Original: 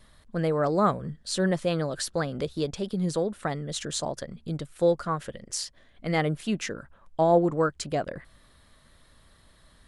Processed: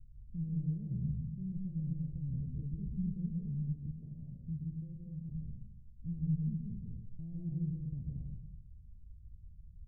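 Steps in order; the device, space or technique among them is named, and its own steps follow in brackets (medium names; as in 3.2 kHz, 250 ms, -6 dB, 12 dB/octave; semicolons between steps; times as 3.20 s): club heard from the street (peak limiter -21.5 dBFS, peak gain reduction 11 dB; low-pass 130 Hz 24 dB/octave; reverberation RT60 0.95 s, pre-delay 115 ms, DRR -3.5 dB); 3.96–5.32 s: bass shelf 130 Hz -9 dB; trim +4 dB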